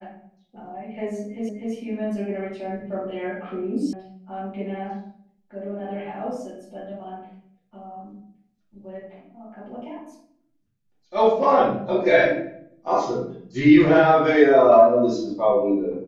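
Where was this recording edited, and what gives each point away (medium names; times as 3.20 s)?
1.49 s: repeat of the last 0.25 s
3.93 s: sound stops dead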